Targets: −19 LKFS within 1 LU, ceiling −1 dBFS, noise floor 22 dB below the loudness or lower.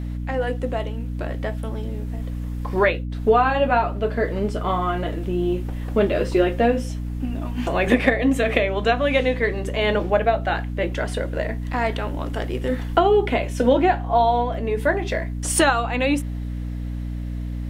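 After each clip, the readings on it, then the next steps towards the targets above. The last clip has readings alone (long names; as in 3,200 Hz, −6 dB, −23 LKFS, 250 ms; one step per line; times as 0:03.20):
mains hum 60 Hz; hum harmonics up to 300 Hz; level of the hum −25 dBFS; integrated loudness −22.5 LKFS; sample peak −2.0 dBFS; target loudness −19.0 LKFS
→ mains-hum notches 60/120/180/240/300 Hz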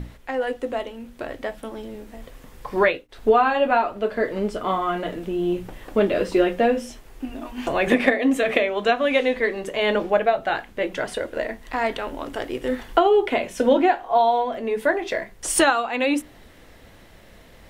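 mains hum none found; integrated loudness −22.5 LKFS; sample peak −3.0 dBFS; target loudness −19.0 LKFS
→ level +3.5 dB
brickwall limiter −1 dBFS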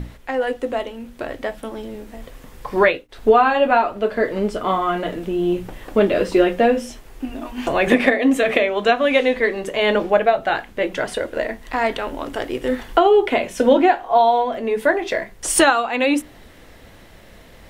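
integrated loudness −19.0 LKFS; sample peak −1.0 dBFS; background noise floor −45 dBFS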